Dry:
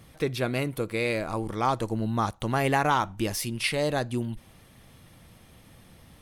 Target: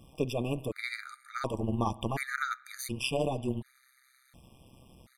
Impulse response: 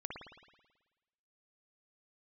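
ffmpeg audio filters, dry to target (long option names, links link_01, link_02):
-filter_complex "[0:a]bandreject=frequency=315.9:width_type=h:width=4,bandreject=frequency=631.8:width_type=h:width=4,bandreject=frequency=947.7:width_type=h:width=4,atempo=1.2,asplit=2[link_01][link_02];[1:a]atrim=start_sample=2205[link_03];[link_02][link_03]afir=irnorm=-1:irlink=0,volume=-17dB[link_04];[link_01][link_04]amix=inputs=2:normalize=0,tremolo=f=130:d=0.824,afftfilt=real='re*gt(sin(2*PI*0.69*pts/sr)*(1-2*mod(floor(b*sr/1024/1200),2)),0)':imag='im*gt(sin(2*PI*0.69*pts/sr)*(1-2*mod(floor(b*sr/1024/1200),2)),0)':win_size=1024:overlap=0.75"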